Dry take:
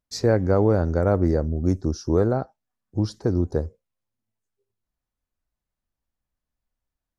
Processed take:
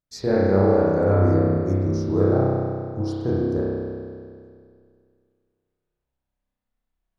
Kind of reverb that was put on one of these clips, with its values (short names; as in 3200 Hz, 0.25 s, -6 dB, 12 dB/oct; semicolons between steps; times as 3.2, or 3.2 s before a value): spring tank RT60 2.2 s, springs 31 ms, chirp 20 ms, DRR -7.5 dB; gain -6 dB